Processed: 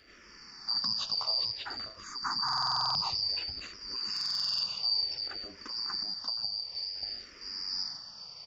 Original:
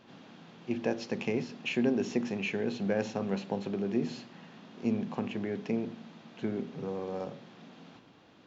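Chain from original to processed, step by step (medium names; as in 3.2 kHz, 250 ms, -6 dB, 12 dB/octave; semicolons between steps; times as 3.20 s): four frequency bands reordered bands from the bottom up 2341; 1.45–2.99 s: static phaser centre 1.2 kHz, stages 4; delay 586 ms -3.5 dB; 6.02–7.03 s: compression 10:1, threshold -38 dBFS, peak gain reduction 11.5 dB; peak limiter -27.5 dBFS, peak gain reduction 11.5 dB; buffer glitch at 2.44/4.12 s, samples 2048, times 10; barber-pole phaser -0.56 Hz; trim +7 dB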